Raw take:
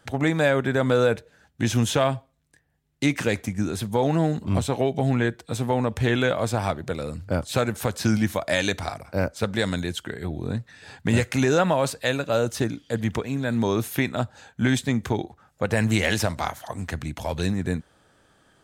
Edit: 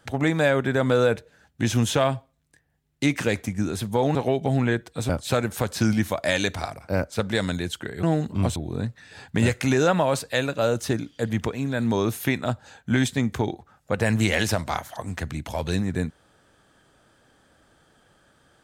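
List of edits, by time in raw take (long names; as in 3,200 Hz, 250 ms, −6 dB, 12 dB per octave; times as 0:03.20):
0:04.15–0:04.68: move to 0:10.27
0:05.62–0:07.33: remove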